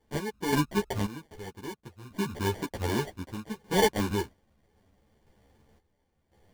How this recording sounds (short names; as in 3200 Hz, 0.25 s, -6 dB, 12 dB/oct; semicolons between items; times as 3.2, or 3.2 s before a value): aliases and images of a low sample rate 1300 Hz, jitter 0%; random-step tremolo 1.9 Hz, depth 85%; a shimmering, thickened sound